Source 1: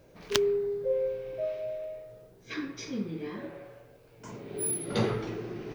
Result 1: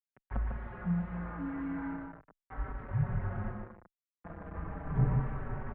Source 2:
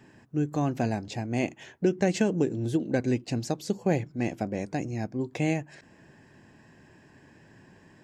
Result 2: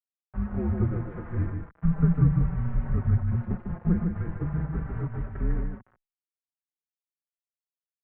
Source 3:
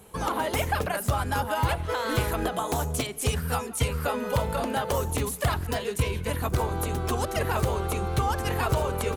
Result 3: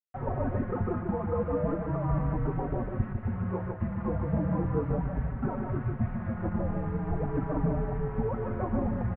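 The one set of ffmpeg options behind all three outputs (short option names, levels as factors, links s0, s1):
-filter_complex "[0:a]adynamicequalizer=threshold=0.01:dfrequency=190:dqfactor=0.71:tfrequency=190:tqfactor=0.71:attack=5:release=100:ratio=0.375:range=3.5:mode=boostabove:tftype=bell,acrossover=split=1200[s0][s1];[s1]acompressor=threshold=0.00631:ratio=6[s2];[s0][s2]amix=inputs=2:normalize=0,aeval=exprs='val(0)+0.00631*(sin(2*PI*60*n/s)+sin(2*PI*2*60*n/s)/2+sin(2*PI*3*60*n/s)/3+sin(2*PI*4*60*n/s)/4+sin(2*PI*5*60*n/s)/5)':c=same,aresample=16000,acrusher=bits=5:mix=0:aa=0.000001,aresample=44100,aecho=1:1:150:0.562,highpass=f=160:t=q:w=0.5412,highpass=f=160:t=q:w=1.307,lowpass=f=2000:t=q:w=0.5176,lowpass=f=2000:t=q:w=0.7071,lowpass=f=2000:t=q:w=1.932,afreqshift=-350,asplit=2[s3][s4];[s4]adelay=4.8,afreqshift=-0.37[s5];[s3][s5]amix=inputs=2:normalize=1"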